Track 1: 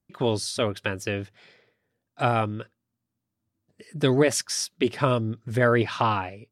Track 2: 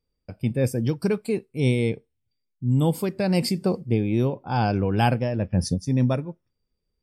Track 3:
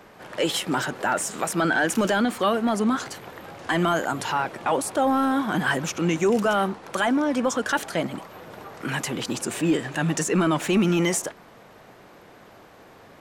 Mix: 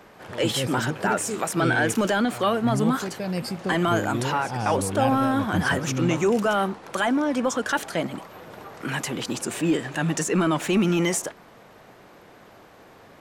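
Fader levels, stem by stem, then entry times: -17.0, -6.5, -0.5 dB; 0.10, 0.00, 0.00 s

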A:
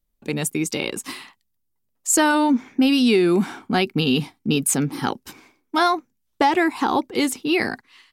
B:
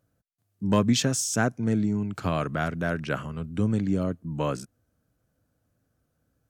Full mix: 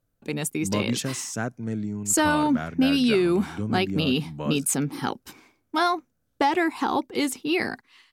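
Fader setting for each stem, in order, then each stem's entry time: -4.0, -5.0 dB; 0.00, 0.00 s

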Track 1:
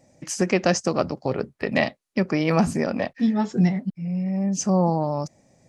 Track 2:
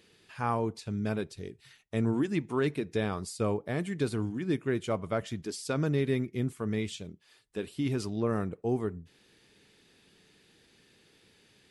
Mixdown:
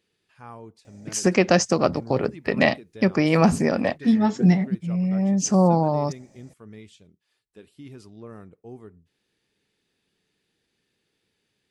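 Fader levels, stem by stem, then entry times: +2.5, -12.0 dB; 0.85, 0.00 s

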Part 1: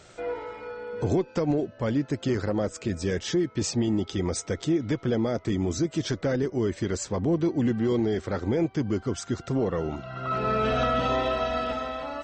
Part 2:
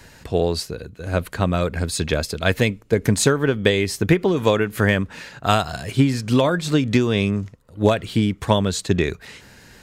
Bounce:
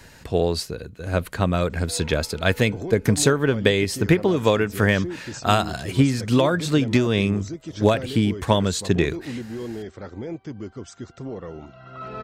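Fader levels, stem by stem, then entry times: -7.5, -1.0 dB; 1.70, 0.00 s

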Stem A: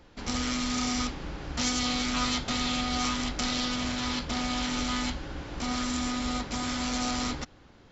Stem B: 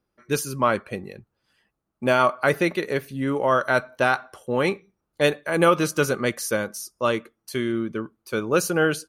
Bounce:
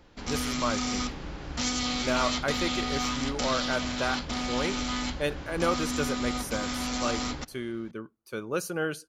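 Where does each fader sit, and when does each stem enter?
-1.0, -9.5 dB; 0.00, 0.00 s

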